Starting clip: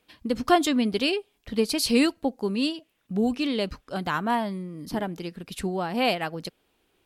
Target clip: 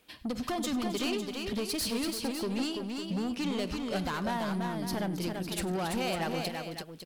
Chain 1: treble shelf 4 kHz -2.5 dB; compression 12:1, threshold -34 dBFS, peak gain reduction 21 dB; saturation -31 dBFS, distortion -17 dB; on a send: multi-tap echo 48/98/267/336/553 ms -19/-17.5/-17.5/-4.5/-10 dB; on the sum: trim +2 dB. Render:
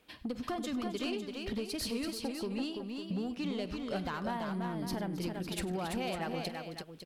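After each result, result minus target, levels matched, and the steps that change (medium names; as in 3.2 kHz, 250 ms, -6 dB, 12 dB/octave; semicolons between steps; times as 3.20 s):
compression: peak gain reduction +7 dB; 8 kHz band -3.0 dB
change: compression 12:1, threshold -26 dBFS, peak gain reduction 13.5 dB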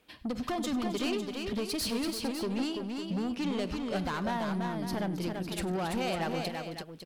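8 kHz band -3.0 dB
change: treble shelf 4 kHz +4.5 dB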